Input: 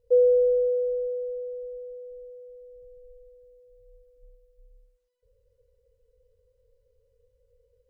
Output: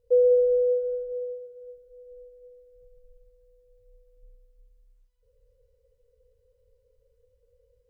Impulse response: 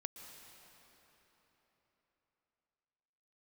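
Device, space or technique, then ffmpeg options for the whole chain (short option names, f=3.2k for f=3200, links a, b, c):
cathedral: -filter_complex "[1:a]atrim=start_sample=2205[a];[0:a][a]afir=irnorm=-1:irlink=0,asettb=1/sr,asplit=3[b][c][d];[b]atrim=end=1.124[e];[c]atrim=start=1.12:end=1.78,asetpts=PTS-STARTPTS,afade=t=in:d=0.004:c=qsin,afade=t=out:st=0.656:d=0.004:c=qsin,highpass=61[f];[d]atrim=start=1.776[g];[e][f]acrossfade=d=0.004:c1=hsin:c2=qsin[h];[h][g]acrossfade=d=0.004:c1=qsin:c2=hsin,volume=3.5dB"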